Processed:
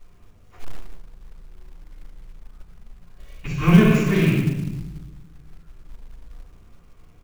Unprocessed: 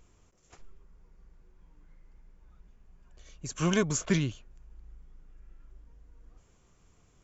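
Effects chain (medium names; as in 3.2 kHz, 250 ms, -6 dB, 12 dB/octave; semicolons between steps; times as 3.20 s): rattle on loud lows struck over -36 dBFS, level -25 dBFS; low-pass 3.1 kHz 12 dB/octave; feedback delay 114 ms, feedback 37%, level -16 dB; simulated room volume 490 m³, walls mixed, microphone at 9.1 m; companded quantiser 6-bit; 3.45–3.92 s: bass shelf 180 Hz +11 dB; trim -8.5 dB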